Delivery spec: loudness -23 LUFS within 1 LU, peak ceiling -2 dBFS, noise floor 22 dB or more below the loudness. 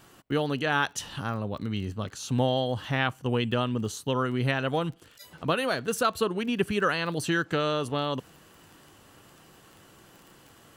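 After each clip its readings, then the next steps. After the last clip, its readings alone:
tick rate 25 per s; loudness -28.5 LUFS; peak level -11.5 dBFS; loudness target -23.0 LUFS
-> de-click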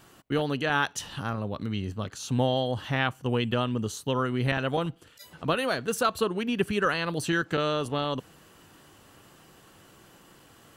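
tick rate 0 per s; loudness -28.5 LUFS; peak level -11.5 dBFS; loudness target -23.0 LUFS
-> trim +5.5 dB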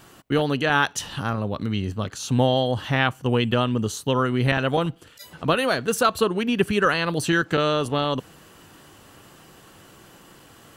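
loudness -23.0 LUFS; peak level -6.0 dBFS; noise floor -50 dBFS

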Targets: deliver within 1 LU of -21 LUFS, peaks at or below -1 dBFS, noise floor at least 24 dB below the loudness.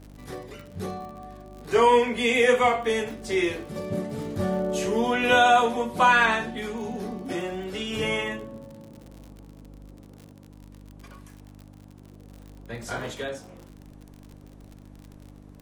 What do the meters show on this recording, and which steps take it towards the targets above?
tick rate 58 per s; hum 50 Hz; highest harmonic 300 Hz; hum level -46 dBFS; loudness -24.0 LUFS; peak level -7.5 dBFS; loudness target -21.0 LUFS
-> de-click; de-hum 50 Hz, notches 6; trim +3 dB

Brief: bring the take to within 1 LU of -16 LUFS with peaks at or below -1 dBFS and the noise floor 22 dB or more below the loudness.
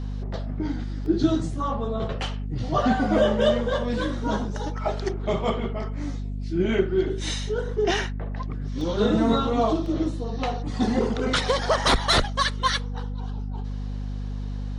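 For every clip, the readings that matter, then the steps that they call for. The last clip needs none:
dropouts 3; longest dropout 1.9 ms; hum 50 Hz; highest harmonic 250 Hz; hum level -28 dBFS; loudness -25.5 LUFS; peak level -8.0 dBFS; loudness target -16.0 LUFS
-> interpolate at 1.06/8.81/9.86 s, 1.9 ms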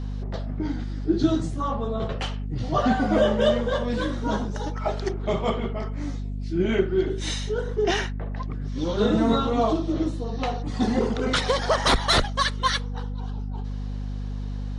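dropouts 0; hum 50 Hz; highest harmonic 250 Hz; hum level -28 dBFS
-> de-hum 50 Hz, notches 5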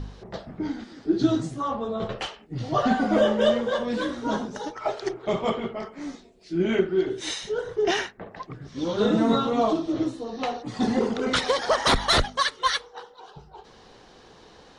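hum not found; loudness -25.5 LUFS; peak level -9.0 dBFS; loudness target -16.0 LUFS
-> trim +9.5 dB; peak limiter -1 dBFS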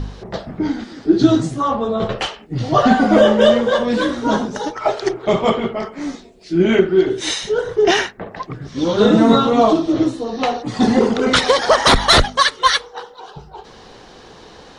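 loudness -16.0 LUFS; peak level -1.0 dBFS; noise floor -42 dBFS

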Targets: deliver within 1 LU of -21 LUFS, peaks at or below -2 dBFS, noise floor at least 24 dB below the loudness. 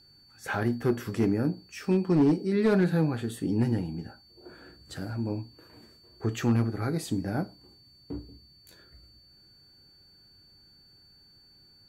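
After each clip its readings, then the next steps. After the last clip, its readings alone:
clipped samples 0.5%; clipping level -17.0 dBFS; steady tone 4.5 kHz; tone level -56 dBFS; loudness -28.0 LUFS; peak level -17.0 dBFS; loudness target -21.0 LUFS
-> clip repair -17 dBFS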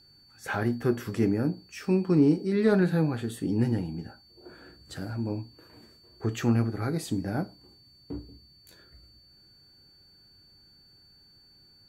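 clipped samples 0.0%; steady tone 4.5 kHz; tone level -56 dBFS
-> band-stop 4.5 kHz, Q 30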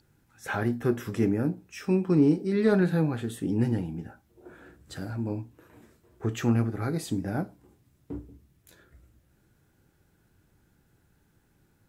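steady tone not found; loudness -27.5 LUFS; peak level -11.0 dBFS; loudness target -21.0 LUFS
-> trim +6.5 dB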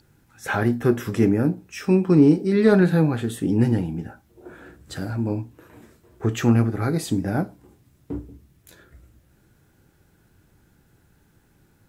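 loudness -21.5 LUFS; peak level -4.5 dBFS; noise floor -61 dBFS

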